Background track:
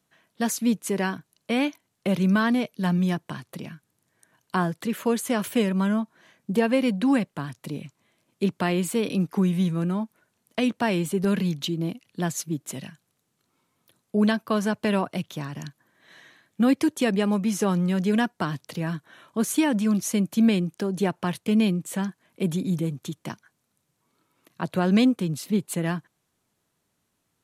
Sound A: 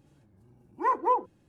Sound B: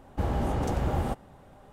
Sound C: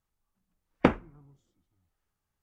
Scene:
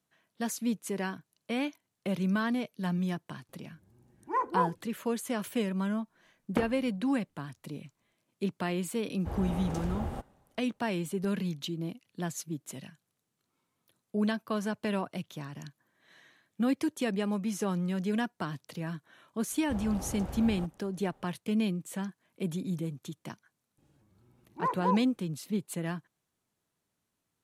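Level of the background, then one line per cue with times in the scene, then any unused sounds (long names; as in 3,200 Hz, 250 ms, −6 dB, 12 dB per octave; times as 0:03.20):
background track −8 dB
0:03.49: mix in A −4 dB
0:05.72: mix in C −5.5 dB + brickwall limiter −10.5 dBFS
0:09.07: mix in B −8 dB + multiband upward and downward expander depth 70%
0:19.52: mix in B −11.5 dB
0:23.78: mix in A −5.5 dB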